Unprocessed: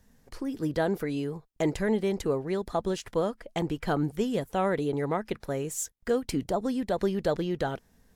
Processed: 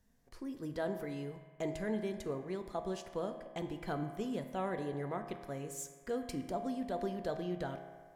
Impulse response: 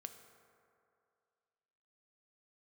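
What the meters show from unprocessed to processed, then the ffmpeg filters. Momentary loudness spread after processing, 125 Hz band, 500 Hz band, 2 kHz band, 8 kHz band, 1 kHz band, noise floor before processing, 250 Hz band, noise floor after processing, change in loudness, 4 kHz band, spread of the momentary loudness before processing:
6 LU, -10.0 dB, -10.0 dB, -9.5 dB, -10.5 dB, -8.5 dB, -65 dBFS, -9.5 dB, -61 dBFS, -10.0 dB, -10.5 dB, 6 LU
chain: -filter_complex "[1:a]atrim=start_sample=2205,asetrate=66150,aresample=44100[a];[0:a][a]afir=irnorm=-1:irlink=0,volume=-1.5dB"

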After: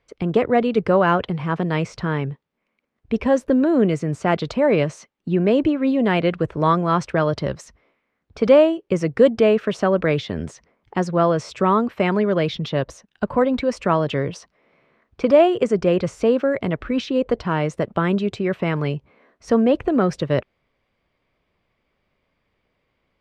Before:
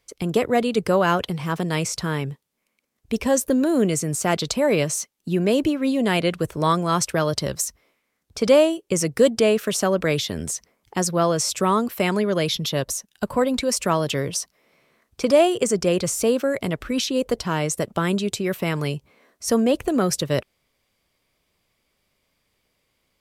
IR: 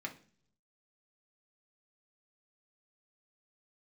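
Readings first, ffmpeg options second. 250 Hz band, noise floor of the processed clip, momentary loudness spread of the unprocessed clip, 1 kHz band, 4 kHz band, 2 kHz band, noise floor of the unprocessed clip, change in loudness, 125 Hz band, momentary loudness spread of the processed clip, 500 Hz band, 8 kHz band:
+2.5 dB, -74 dBFS, 8 LU, +2.5 dB, -6.0 dB, +0.5 dB, -74 dBFS, +2.0 dB, +2.5 dB, 9 LU, +2.5 dB, under -15 dB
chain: -af "lowpass=2.3k,volume=2.5dB"

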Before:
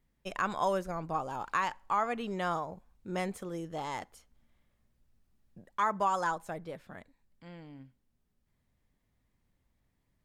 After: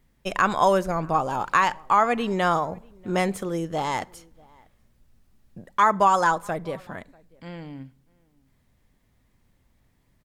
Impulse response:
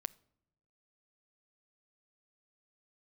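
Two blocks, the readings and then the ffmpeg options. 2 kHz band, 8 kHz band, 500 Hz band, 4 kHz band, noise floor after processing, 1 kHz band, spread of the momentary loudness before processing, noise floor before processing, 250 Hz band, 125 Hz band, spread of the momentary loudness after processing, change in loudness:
+11.0 dB, +10.5 dB, +10.5 dB, +11.0 dB, -66 dBFS, +11.0 dB, 20 LU, -77 dBFS, +10.5 dB, +10.5 dB, 20 LU, +10.5 dB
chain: -filter_complex "[0:a]asplit=2[a][b];[b]adelay=641.4,volume=-27dB,highshelf=f=4k:g=-14.4[c];[a][c]amix=inputs=2:normalize=0,asplit=2[d][e];[1:a]atrim=start_sample=2205,asetrate=38808,aresample=44100[f];[e][f]afir=irnorm=-1:irlink=0,volume=3dB[g];[d][g]amix=inputs=2:normalize=0,volume=4dB"

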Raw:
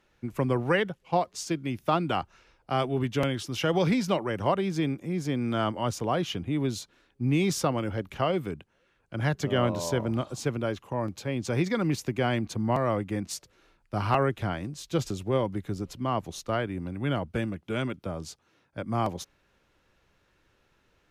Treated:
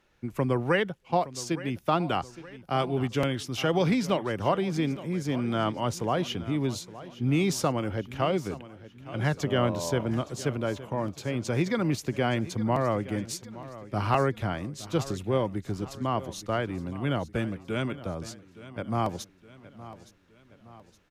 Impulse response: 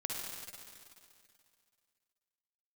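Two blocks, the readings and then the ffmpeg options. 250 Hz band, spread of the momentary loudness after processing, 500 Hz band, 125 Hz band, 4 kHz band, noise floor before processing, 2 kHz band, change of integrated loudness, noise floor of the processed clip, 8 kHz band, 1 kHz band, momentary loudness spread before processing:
0.0 dB, 12 LU, 0.0 dB, 0.0 dB, 0.0 dB, -69 dBFS, 0.0 dB, 0.0 dB, -58 dBFS, 0.0 dB, 0.0 dB, 10 LU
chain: -af "aecho=1:1:867|1734|2601|3468:0.15|0.0718|0.0345|0.0165"

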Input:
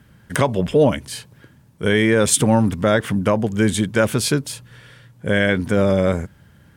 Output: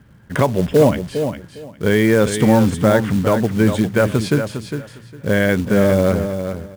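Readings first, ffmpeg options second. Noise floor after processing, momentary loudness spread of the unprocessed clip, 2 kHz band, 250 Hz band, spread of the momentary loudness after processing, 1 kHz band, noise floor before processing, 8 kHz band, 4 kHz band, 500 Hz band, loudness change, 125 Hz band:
-45 dBFS, 14 LU, 0.0 dB, +3.0 dB, 12 LU, +1.5 dB, -52 dBFS, -8.0 dB, -3.5 dB, +2.5 dB, +1.5 dB, +3.0 dB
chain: -af "lowpass=f=1.6k:p=1,acrusher=bits=5:mode=log:mix=0:aa=0.000001,aecho=1:1:406|812|1218:0.376|0.0714|0.0136,volume=2.5dB"

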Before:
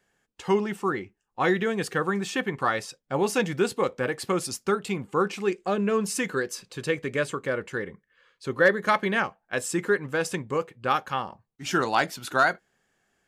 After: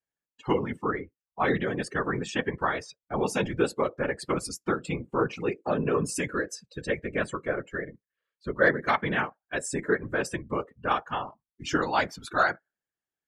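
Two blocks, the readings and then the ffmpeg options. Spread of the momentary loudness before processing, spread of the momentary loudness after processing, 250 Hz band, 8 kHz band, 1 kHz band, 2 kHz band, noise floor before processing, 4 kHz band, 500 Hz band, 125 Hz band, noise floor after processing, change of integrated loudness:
10 LU, 10 LU, -2.0 dB, -3.5 dB, -2.0 dB, -2.0 dB, -76 dBFS, -3.5 dB, -2.5 dB, -0.5 dB, under -85 dBFS, -2.5 dB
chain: -af "afftfilt=real='hypot(re,im)*cos(2*PI*random(0))':imag='hypot(re,im)*sin(2*PI*random(1))':win_size=512:overlap=0.75,afftdn=nr=22:nf=-46,volume=4dB"

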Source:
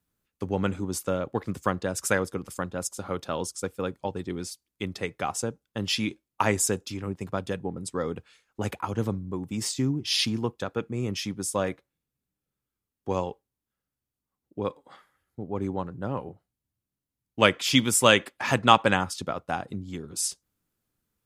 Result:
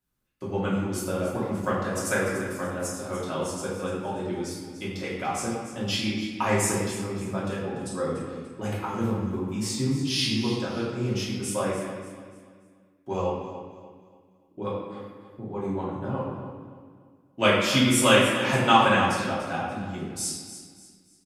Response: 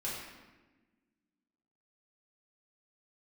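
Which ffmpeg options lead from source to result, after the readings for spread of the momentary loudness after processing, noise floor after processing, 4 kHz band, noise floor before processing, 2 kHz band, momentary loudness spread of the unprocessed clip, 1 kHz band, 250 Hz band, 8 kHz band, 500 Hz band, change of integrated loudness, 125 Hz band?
16 LU, -60 dBFS, 0.0 dB, under -85 dBFS, +1.5 dB, 15 LU, +1.5 dB, +2.5 dB, -1.0 dB, +1.5 dB, +1.0 dB, +2.0 dB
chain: -filter_complex "[0:a]aecho=1:1:291|582|873|1164:0.237|0.0854|0.0307|0.0111[a];[1:a]atrim=start_sample=2205[b];[a][b]afir=irnorm=-1:irlink=0,volume=-2dB"

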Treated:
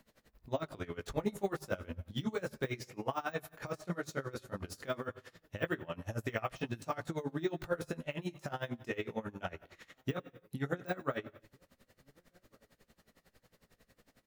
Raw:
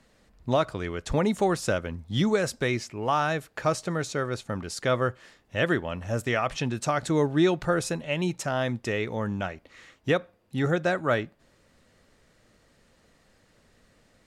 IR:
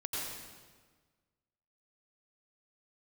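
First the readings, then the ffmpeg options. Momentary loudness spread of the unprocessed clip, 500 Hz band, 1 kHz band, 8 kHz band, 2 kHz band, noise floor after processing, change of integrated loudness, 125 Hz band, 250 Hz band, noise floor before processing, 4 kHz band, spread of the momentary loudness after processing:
7 LU, -12.0 dB, -12.5 dB, -16.0 dB, -12.0 dB, -79 dBFS, -12.0 dB, -11.5 dB, -12.0 dB, -64 dBFS, -13.5 dB, 7 LU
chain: -filter_complex "[0:a]deesser=0.9,bandreject=f=50:t=h:w=6,bandreject=f=100:t=h:w=6,bandreject=f=150:t=h:w=6,acompressor=threshold=-32dB:ratio=2,aexciter=amount=1.7:drive=9.9:freq=11k,flanger=delay=18:depth=4.9:speed=0.15,asplit=2[a][b];[b]adelay=1458,volume=-30dB,highshelf=f=4k:g=-32.8[c];[a][c]amix=inputs=2:normalize=0,asplit=2[d][e];[1:a]atrim=start_sample=2205,afade=t=out:st=0.33:d=0.01,atrim=end_sample=14994[f];[e][f]afir=irnorm=-1:irlink=0,volume=-18.5dB[g];[d][g]amix=inputs=2:normalize=0,aeval=exprs='val(0)*pow(10,-22*(0.5-0.5*cos(2*PI*11*n/s))/20)':c=same,volume=2dB"

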